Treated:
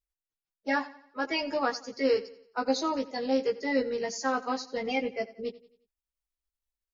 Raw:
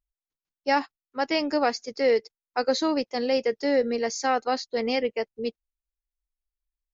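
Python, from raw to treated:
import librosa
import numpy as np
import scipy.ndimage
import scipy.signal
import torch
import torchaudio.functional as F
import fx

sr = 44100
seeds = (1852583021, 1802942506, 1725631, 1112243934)

y = fx.spec_quant(x, sr, step_db=30)
y = fx.doubler(y, sr, ms=15.0, db=-4.0)
y = fx.echo_feedback(y, sr, ms=89, feedback_pct=43, wet_db=-18)
y = y * librosa.db_to_amplitude(-5.5)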